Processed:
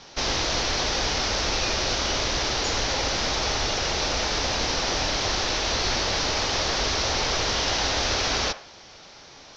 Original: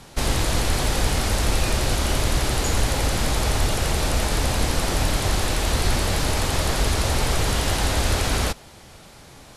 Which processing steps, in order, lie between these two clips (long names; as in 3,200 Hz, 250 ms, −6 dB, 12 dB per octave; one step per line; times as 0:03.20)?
elliptic low-pass filter 5,900 Hz, stop band 40 dB
bass and treble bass −10 dB, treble +8 dB
on a send: delay with a band-pass on its return 69 ms, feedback 35%, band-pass 1,100 Hz, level −11.5 dB